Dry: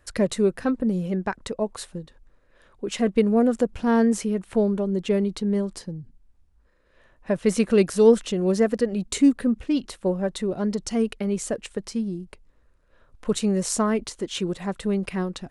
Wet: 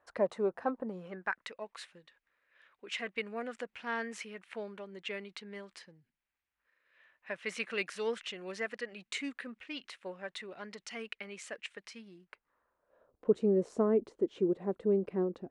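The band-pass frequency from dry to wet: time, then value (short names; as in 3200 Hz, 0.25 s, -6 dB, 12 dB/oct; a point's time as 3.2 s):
band-pass, Q 1.9
0.77 s 830 Hz
1.49 s 2200 Hz
12.1 s 2200 Hz
13.3 s 390 Hz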